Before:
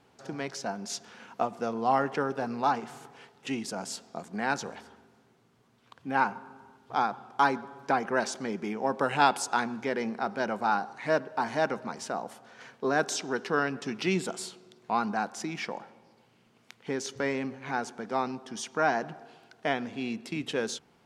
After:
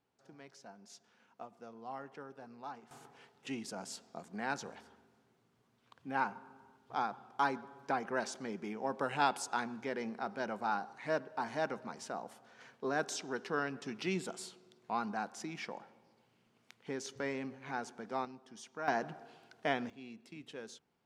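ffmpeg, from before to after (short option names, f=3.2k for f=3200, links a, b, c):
-af "asetnsamples=n=441:p=0,asendcmd='2.91 volume volume -8dB;18.25 volume volume -14.5dB;18.88 volume volume -4.5dB;19.9 volume volume -16.5dB',volume=-19.5dB"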